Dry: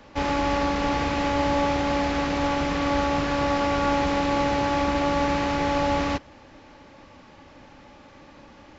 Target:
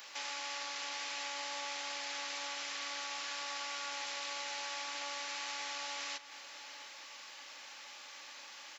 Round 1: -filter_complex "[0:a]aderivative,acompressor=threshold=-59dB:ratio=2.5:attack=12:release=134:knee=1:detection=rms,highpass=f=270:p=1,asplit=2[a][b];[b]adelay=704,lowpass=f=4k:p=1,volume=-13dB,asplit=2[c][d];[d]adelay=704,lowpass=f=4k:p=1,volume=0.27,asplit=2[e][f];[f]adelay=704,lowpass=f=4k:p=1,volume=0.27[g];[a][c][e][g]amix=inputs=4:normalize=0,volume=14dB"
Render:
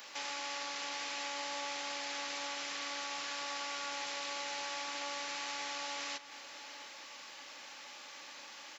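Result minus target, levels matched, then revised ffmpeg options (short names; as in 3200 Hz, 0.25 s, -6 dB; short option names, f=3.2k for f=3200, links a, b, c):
250 Hz band +5.5 dB
-filter_complex "[0:a]aderivative,acompressor=threshold=-59dB:ratio=2.5:attack=12:release=134:knee=1:detection=rms,highpass=f=760:p=1,asplit=2[a][b];[b]adelay=704,lowpass=f=4k:p=1,volume=-13dB,asplit=2[c][d];[d]adelay=704,lowpass=f=4k:p=1,volume=0.27,asplit=2[e][f];[f]adelay=704,lowpass=f=4k:p=1,volume=0.27[g];[a][c][e][g]amix=inputs=4:normalize=0,volume=14dB"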